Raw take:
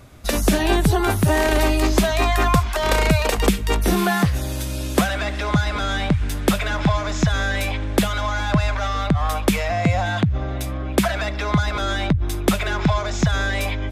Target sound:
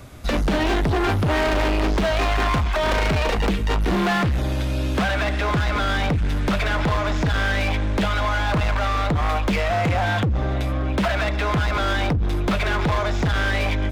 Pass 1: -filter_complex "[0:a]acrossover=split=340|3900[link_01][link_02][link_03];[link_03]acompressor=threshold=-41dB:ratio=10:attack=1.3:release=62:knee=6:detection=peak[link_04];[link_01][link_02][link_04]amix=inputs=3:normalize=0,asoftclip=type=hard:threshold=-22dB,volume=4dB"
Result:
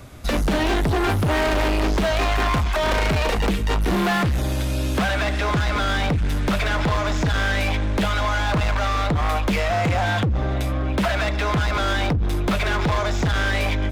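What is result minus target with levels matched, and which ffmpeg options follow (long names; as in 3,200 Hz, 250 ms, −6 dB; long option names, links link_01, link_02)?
downward compressor: peak gain reduction −9 dB
-filter_complex "[0:a]acrossover=split=340|3900[link_01][link_02][link_03];[link_03]acompressor=threshold=-51dB:ratio=10:attack=1.3:release=62:knee=6:detection=peak[link_04];[link_01][link_02][link_04]amix=inputs=3:normalize=0,asoftclip=type=hard:threshold=-22dB,volume=4dB"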